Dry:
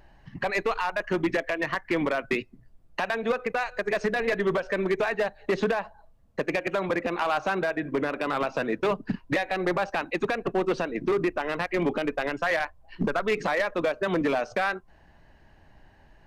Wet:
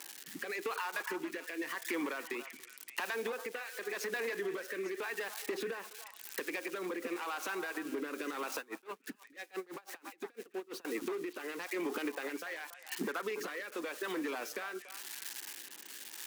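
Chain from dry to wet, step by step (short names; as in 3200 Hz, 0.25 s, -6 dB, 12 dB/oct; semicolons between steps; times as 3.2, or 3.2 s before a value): switching spikes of -32.5 dBFS; HPF 300 Hz 24 dB/oct; bell 630 Hz -13.5 dB 0.43 oct; limiter -25.5 dBFS, peak gain reduction 10.5 dB; compressor, threshold -39 dBFS, peak gain reduction 9 dB; rotary speaker horn 0.9 Hz; delay with a stepping band-pass 0.284 s, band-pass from 920 Hz, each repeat 1.4 oct, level -7 dB; 8.58–10.85 dB-linear tremolo 6 Hz, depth 28 dB; gain +6 dB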